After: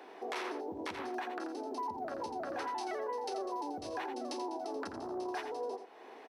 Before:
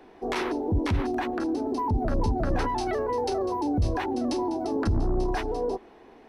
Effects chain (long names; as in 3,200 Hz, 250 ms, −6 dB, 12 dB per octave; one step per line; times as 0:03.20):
high-pass filter 460 Hz 12 dB per octave
downward compressor 2 to 1, threshold −48 dBFS, peak gain reduction 11.5 dB
on a send: single-tap delay 85 ms −8.5 dB
on the sum: level +2.5 dB